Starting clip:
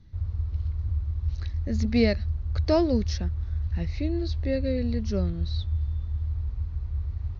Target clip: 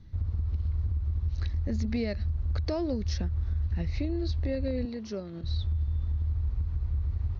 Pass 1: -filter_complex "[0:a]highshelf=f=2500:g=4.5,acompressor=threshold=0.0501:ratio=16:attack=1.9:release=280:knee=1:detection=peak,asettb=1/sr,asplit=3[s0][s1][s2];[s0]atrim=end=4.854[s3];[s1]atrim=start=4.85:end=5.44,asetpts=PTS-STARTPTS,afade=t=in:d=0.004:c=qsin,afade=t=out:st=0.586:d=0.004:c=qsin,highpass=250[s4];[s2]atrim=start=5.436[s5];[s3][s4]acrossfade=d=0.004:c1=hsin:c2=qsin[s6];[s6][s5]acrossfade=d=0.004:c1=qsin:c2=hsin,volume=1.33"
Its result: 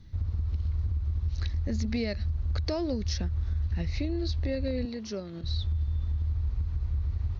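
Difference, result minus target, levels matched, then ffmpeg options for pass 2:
4 kHz band +4.5 dB
-filter_complex "[0:a]highshelf=f=2500:g=-2.5,acompressor=threshold=0.0501:ratio=16:attack=1.9:release=280:knee=1:detection=peak,asettb=1/sr,asplit=3[s0][s1][s2];[s0]atrim=end=4.854[s3];[s1]atrim=start=4.85:end=5.44,asetpts=PTS-STARTPTS,afade=t=in:d=0.004:c=qsin,afade=t=out:st=0.586:d=0.004:c=qsin,highpass=250[s4];[s2]atrim=start=5.436[s5];[s3][s4]acrossfade=d=0.004:c1=hsin:c2=qsin[s6];[s6][s5]acrossfade=d=0.004:c1=qsin:c2=hsin,volume=1.33"

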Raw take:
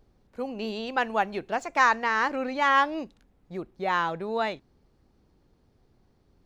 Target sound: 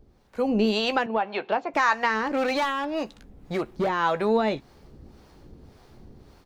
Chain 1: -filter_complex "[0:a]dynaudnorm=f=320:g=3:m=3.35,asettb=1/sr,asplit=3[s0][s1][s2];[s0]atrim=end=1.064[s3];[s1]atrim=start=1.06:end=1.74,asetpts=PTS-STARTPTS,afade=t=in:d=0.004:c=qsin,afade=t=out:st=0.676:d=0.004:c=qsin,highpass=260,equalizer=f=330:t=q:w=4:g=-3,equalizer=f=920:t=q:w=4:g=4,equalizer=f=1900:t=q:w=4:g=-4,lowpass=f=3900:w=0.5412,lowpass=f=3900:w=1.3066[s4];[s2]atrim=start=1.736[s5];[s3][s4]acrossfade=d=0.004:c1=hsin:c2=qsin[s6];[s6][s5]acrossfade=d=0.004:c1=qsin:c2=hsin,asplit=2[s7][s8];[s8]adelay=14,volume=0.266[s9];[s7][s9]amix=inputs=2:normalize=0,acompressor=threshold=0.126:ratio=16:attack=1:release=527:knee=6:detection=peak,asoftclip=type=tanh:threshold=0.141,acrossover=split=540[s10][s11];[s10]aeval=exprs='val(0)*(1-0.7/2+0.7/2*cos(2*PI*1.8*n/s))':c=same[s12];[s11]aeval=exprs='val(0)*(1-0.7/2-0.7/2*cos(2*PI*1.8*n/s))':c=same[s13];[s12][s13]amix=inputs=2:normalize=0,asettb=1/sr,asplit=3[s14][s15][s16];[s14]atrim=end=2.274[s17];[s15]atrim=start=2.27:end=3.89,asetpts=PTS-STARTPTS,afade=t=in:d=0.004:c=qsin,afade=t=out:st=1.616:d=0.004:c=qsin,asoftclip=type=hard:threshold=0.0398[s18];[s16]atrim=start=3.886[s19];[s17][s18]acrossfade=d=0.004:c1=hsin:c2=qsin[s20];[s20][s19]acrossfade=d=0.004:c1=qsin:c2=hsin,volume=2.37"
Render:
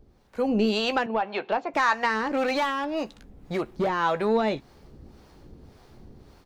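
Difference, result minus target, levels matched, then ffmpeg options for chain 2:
saturation: distortion +10 dB
-filter_complex "[0:a]dynaudnorm=f=320:g=3:m=3.35,asettb=1/sr,asplit=3[s0][s1][s2];[s0]atrim=end=1.064[s3];[s1]atrim=start=1.06:end=1.74,asetpts=PTS-STARTPTS,afade=t=in:d=0.004:c=qsin,afade=t=out:st=0.676:d=0.004:c=qsin,highpass=260,equalizer=f=330:t=q:w=4:g=-3,equalizer=f=920:t=q:w=4:g=4,equalizer=f=1900:t=q:w=4:g=-4,lowpass=f=3900:w=0.5412,lowpass=f=3900:w=1.3066[s4];[s2]atrim=start=1.736[s5];[s3][s4]acrossfade=d=0.004:c1=hsin:c2=qsin[s6];[s6][s5]acrossfade=d=0.004:c1=qsin:c2=hsin,asplit=2[s7][s8];[s8]adelay=14,volume=0.266[s9];[s7][s9]amix=inputs=2:normalize=0,acompressor=threshold=0.126:ratio=16:attack=1:release=527:knee=6:detection=peak,asoftclip=type=tanh:threshold=0.282,acrossover=split=540[s10][s11];[s10]aeval=exprs='val(0)*(1-0.7/2+0.7/2*cos(2*PI*1.8*n/s))':c=same[s12];[s11]aeval=exprs='val(0)*(1-0.7/2-0.7/2*cos(2*PI*1.8*n/s))':c=same[s13];[s12][s13]amix=inputs=2:normalize=0,asettb=1/sr,asplit=3[s14][s15][s16];[s14]atrim=end=2.274[s17];[s15]atrim=start=2.27:end=3.89,asetpts=PTS-STARTPTS,afade=t=in:d=0.004:c=qsin,afade=t=out:st=1.616:d=0.004:c=qsin,asoftclip=type=hard:threshold=0.0398[s18];[s16]atrim=start=3.886[s19];[s17][s18]acrossfade=d=0.004:c1=hsin:c2=qsin[s20];[s20][s19]acrossfade=d=0.004:c1=qsin:c2=hsin,volume=2.37"

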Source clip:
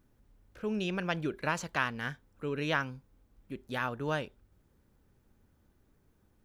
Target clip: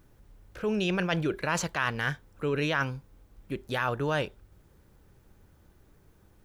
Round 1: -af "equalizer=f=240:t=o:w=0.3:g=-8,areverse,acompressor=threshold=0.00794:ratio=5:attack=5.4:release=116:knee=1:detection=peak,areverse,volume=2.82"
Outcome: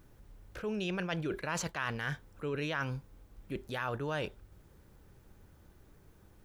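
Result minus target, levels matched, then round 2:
compression: peak gain reduction +7 dB
-af "equalizer=f=240:t=o:w=0.3:g=-8,areverse,acompressor=threshold=0.0224:ratio=5:attack=5.4:release=116:knee=1:detection=peak,areverse,volume=2.82"

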